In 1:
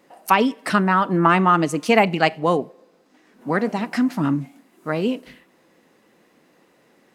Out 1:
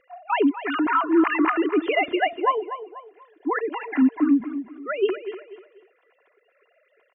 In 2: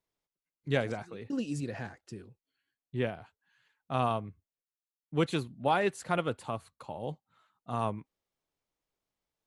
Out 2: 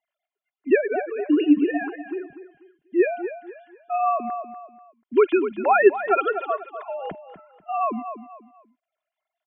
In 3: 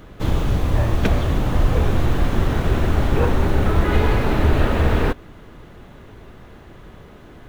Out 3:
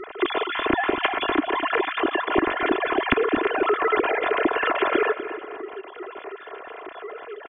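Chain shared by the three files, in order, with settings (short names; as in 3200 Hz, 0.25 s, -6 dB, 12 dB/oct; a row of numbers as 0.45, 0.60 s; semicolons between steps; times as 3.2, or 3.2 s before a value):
sine-wave speech; compressor 3:1, threshold -19 dBFS; comb 2.9 ms, depth 63%; on a send: feedback echo 0.244 s, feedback 31%, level -12 dB; on the sum: dynamic EQ 690 Hz, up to -5 dB, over -34 dBFS, Q 1.4; match loudness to -23 LUFS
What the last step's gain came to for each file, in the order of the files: +1.0, +11.0, -1.0 dB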